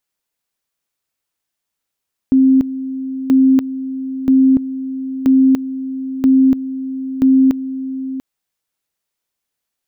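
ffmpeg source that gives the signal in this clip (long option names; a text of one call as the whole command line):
ffmpeg -f lavfi -i "aevalsrc='pow(10,(-7-13.5*gte(mod(t,0.98),0.29))/20)*sin(2*PI*264*t)':duration=5.88:sample_rate=44100" out.wav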